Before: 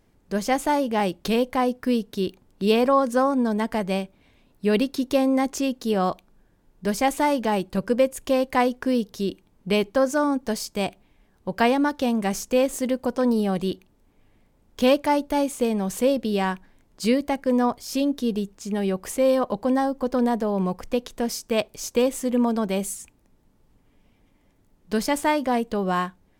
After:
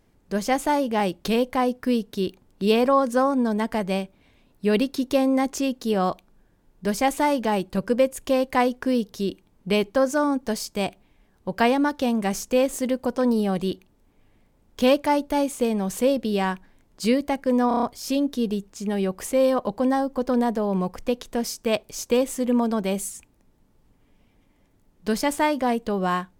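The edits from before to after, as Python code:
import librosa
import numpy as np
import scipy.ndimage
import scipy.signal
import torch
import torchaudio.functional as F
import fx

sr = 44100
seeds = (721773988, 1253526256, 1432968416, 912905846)

y = fx.edit(x, sr, fx.stutter(start_s=17.68, slice_s=0.03, count=6), tone=tone)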